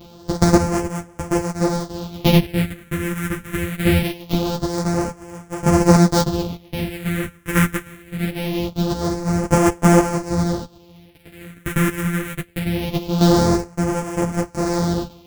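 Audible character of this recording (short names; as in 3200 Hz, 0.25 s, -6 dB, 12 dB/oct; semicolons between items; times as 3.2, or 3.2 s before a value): a buzz of ramps at a fixed pitch in blocks of 256 samples; phasing stages 4, 0.23 Hz, lowest notch 730–3800 Hz; chopped level 0.53 Hz, depth 60%, duty 30%; a shimmering, thickened sound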